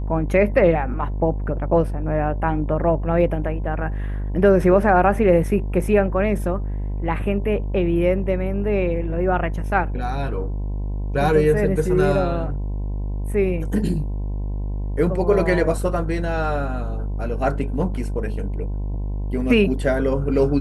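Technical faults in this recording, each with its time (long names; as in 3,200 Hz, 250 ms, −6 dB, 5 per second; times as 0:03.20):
mains buzz 50 Hz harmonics 21 −25 dBFS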